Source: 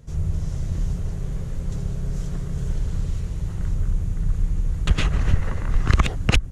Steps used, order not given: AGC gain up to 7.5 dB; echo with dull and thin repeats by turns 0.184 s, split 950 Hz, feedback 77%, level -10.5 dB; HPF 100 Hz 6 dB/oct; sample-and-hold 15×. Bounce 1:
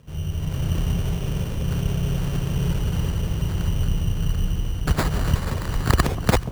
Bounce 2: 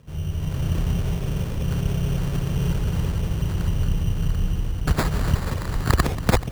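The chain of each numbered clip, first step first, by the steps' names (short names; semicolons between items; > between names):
sample-and-hold > echo with dull and thin repeats by turns > AGC > HPF; echo with dull and thin repeats by turns > AGC > HPF > sample-and-hold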